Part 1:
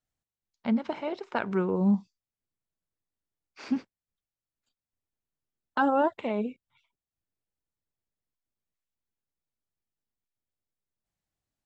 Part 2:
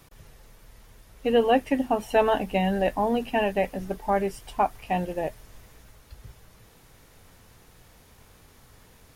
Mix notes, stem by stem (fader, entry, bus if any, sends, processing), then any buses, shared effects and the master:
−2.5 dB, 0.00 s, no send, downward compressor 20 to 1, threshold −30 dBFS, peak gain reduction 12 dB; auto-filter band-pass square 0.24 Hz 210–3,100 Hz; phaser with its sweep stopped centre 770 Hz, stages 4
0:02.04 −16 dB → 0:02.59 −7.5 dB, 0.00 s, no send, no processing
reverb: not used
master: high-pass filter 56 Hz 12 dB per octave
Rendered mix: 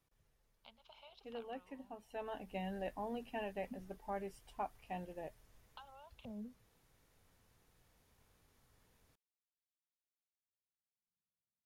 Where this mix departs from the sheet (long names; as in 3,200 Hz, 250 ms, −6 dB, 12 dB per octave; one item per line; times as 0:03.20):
stem 2 −16.0 dB → −26.5 dB
master: missing high-pass filter 56 Hz 12 dB per octave